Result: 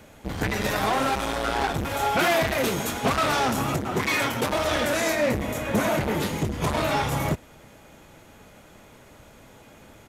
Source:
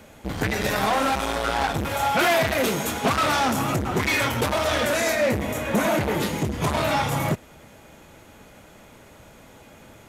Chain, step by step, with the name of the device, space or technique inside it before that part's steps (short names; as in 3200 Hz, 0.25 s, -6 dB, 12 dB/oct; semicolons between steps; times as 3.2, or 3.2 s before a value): octave pedal (harmoniser -12 st -9 dB); 3.77–4.52 HPF 110 Hz; gain -2 dB